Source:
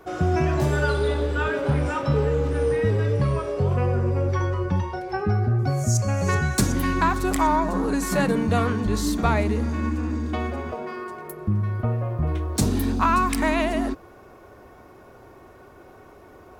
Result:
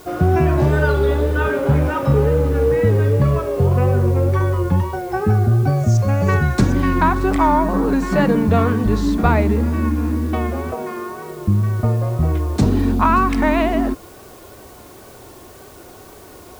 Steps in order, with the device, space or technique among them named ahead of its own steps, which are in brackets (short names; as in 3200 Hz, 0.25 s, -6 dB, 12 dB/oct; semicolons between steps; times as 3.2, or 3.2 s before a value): cassette deck with a dirty head (tape spacing loss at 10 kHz 21 dB; wow and flutter; white noise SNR 30 dB); gain +7 dB